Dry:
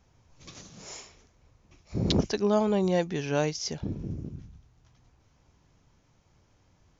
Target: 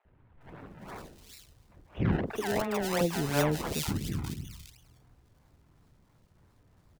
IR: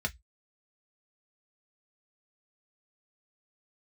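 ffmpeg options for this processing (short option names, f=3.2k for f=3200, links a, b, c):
-filter_complex "[0:a]asettb=1/sr,asplit=3[a][b][c];[a]atrim=end=2.104[d];[b]atrim=start=2.1:end=2.96,asetpts=PTS-STARTPTS,afade=t=in:d=0.004:c=qsin,afade=t=out:st=0.856:d=0.004:c=qsin,acrossover=split=440|1100[e][f][g];[e]acompressor=threshold=-37dB:ratio=4[h];[f]acompressor=threshold=-29dB:ratio=4[i];[g]acompressor=threshold=-39dB:ratio=4[j];[h][i][j]amix=inputs=3:normalize=0[k];[c]atrim=start=2.956[l];[d][k]acrossfade=d=0.004:c1=hsin:c2=qsin[m];[m][l]acrossfade=d=0.004:c1=qsin:c2=hsin,acrusher=samples=27:mix=1:aa=0.000001:lfo=1:lforange=27:lforate=2.9,acrossover=split=590|2700[n][o][p];[n]adelay=50[q];[p]adelay=410[r];[q][o][r]amix=inputs=3:normalize=0,volume=1.5dB"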